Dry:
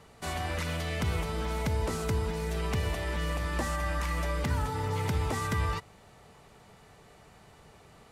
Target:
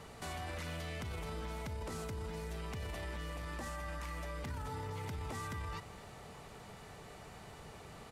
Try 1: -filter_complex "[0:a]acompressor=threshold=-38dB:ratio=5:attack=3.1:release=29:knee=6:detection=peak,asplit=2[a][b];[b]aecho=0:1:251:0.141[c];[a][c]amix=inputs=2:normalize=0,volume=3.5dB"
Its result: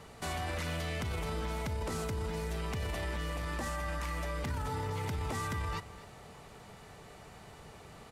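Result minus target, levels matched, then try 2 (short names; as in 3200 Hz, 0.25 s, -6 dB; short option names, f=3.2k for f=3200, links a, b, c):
compressor: peak gain reduction -6 dB
-filter_complex "[0:a]acompressor=threshold=-45.5dB:ratio=5:attack=3.1:release=29:knee=6:detection=peak,asplit=2[a][b];[b]aecho=0:1:251:0.141[c];[a][c]amix=inputs=2:normalize=0,volume=3.5dB"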